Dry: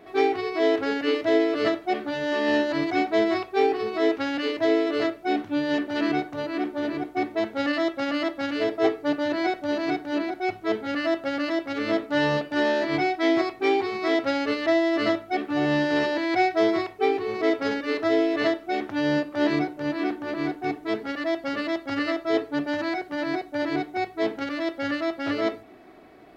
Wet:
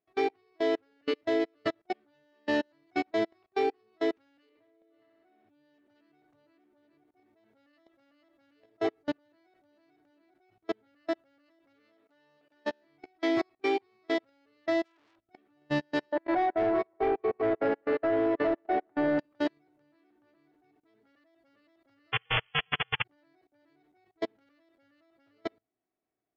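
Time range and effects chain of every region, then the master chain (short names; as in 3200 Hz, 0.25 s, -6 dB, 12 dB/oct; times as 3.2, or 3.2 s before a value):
4.49–5.49 LPF 3000 Hz + compressor 2:1, threshold -32 dBFS + flutter echo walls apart 10.9 m, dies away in 1.2 s
11.8–12.65 HPF 380 Hz 6 dB/oct + mismatched tape noise reduction encoder only
14.84–15.27 low shelf 160 Hz +11.5 dB + fixed phaser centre 370 Hz, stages 4 + core saturation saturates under 3200 Hz
16.12–19.19 regenerating reverse delay 0.102 s, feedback 73%, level -10 dB + EQ curve 130 Hz 0 dB, 610 Hz +1 dB, 1800 Hz -7 dB, 3400 Hz -16 dB, 5600 Hz -21 dB + overdrive pedal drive 15 dB, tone 2800 Hz, clips at -9.5 dBFS
22.12–23.04 tilt -4 dB/oct + inverted band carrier 3100 Hz + spectral compressor 10:1
whole clip: bell 120 Hz +8 dB 0.25 oct; level quantiser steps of 22 dB; upward expander 2.5:1, over -35 dBFS; gain -2 dB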